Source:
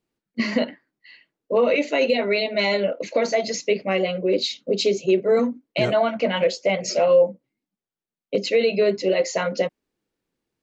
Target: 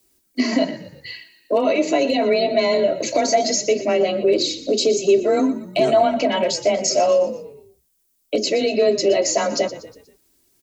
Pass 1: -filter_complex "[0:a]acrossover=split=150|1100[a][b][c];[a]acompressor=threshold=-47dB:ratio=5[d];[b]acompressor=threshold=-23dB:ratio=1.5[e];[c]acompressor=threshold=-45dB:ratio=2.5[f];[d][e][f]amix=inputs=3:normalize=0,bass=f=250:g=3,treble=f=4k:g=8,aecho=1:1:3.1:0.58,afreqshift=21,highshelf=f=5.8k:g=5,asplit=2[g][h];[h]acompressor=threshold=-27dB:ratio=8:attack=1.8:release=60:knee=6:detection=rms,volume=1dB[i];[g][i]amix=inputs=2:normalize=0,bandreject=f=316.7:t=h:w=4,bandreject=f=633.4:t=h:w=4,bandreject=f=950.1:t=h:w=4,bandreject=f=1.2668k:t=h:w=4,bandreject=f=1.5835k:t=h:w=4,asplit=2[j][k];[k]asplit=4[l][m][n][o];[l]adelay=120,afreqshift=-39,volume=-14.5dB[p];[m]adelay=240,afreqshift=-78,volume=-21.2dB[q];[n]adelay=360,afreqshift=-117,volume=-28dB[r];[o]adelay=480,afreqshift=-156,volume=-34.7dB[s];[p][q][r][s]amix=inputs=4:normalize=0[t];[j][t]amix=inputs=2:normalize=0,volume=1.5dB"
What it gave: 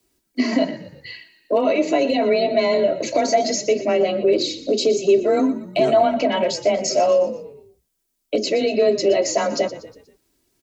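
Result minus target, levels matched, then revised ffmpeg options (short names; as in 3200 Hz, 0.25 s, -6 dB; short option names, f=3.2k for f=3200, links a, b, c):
8000 Hz band -3.5 dB
-filter_complex "[0:a]acrossover=split=150|1100[a][b][c];[a]acompressor=threshold=-47dB:ratio=5[d];[b]acompressor=threshold=-23dB:ratio=1.5[e];[c]acompressor=threshold=-45dB:ratio=2.5[f];[d][e][f]amix=inputs=3:normalize=0,bass=f=250:g=3,treble=f=4k:g=8,aecho=1:1:3.1:0.58,afreqshift=21,highshelf=f=5.8k:g=14,asplit=2[g][h];[h]acompressor=threshold=-27dB:ratio=8:attack=1.8:release=60:knee=6:detection=rms,volume=1dB[i];[g][i]amix=inputs=2:normalize=0,bandreject=f=316.7:t=h:w=4,bandreject=f=633.4:t=h:w=4,bandreject=f=950.1:t=h:w=4,bandreject=f=1.2668k:t=h:w=4,bandreject=f=1.5835k:t=h:w=4,asplit=2[j][k];[k]asplit=4[l][m][n][o];[l]adelay=120,afreqshift=-39,volume=-14.5dB[p];[m]adelay=240,afreqshift=-78,volume=-21.2dB[q];[n]adelay=360,afreqshift=-117,volume=-28dB[r];[o]adelay=480,afreqshift=-156,volume=-34.7dB[s];[p][q][r][s]amix=inputs=4:normalize=0[t];[j][t]amix=inputs=2:normalize=0,volume=1.5dB"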